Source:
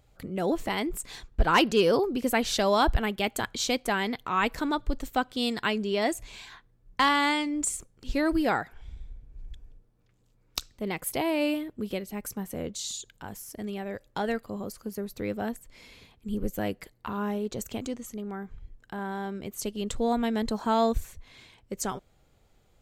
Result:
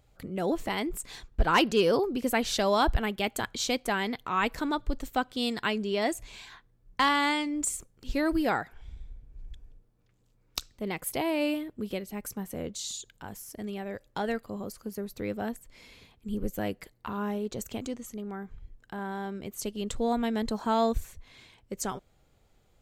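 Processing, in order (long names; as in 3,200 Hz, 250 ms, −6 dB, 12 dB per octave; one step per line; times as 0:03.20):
0:07.53–0:08.50: parametric band 14,000 Hz +6.5 dB 0.29 octaves
level −1.5 dB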